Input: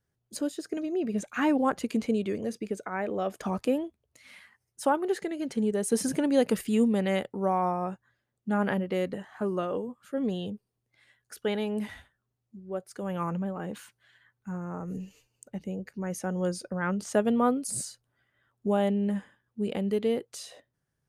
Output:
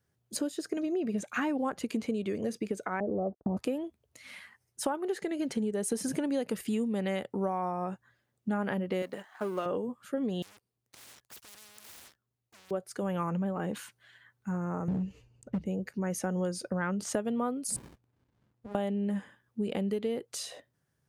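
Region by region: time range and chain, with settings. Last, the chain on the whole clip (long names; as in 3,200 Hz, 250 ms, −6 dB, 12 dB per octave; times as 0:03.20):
0:03.00–0:03.57: inverse Chebyshev low-pass filter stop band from 3,300 Hz, stop band 70 dB + noise gate −42 dBFS, range −45 dB + low-shelf EQ 190 Hz +9 dB
0:09.02–0:09.66: mu-law and A-law mismatch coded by A + high-pass filter 500 Hz 6 dB per octave
0:10.42–0:12.71: downward compressor 4 to 1, threshold −40 dBFS + leveller curve on the samples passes 5 + every bin compressed towards the loudest bin 10 to 1
0:14.88–0:15.66: one scale factor per block 7 bits + RIAA equalisation playback + gain into a clipping stage and back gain 25 dB
0:17.76–0:18.75: downward compressor, threshold −42 dBFS + windowed peak hold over 65 samples
whole clip: high-pass filter 57 Hz; downward compressor 6 to 1, threshold −32 dBFS; level +3.5 dB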